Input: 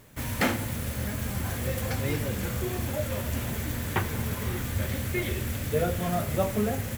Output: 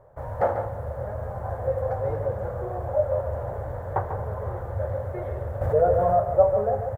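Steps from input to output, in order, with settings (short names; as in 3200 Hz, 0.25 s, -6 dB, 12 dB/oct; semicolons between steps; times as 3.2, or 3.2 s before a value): EQ curve 110 Hz 0 dB, 260 Hz -17 dB, 550 Hz +12 dB, 790 Hz +9 dB, 1700 Hz -8 dB, 2500 Hz -27 dB, 5500 Hz -29 dB; echo 0.144 s -8 dB; 5.61–6.2 fast leveller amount 50%; gain -1 dB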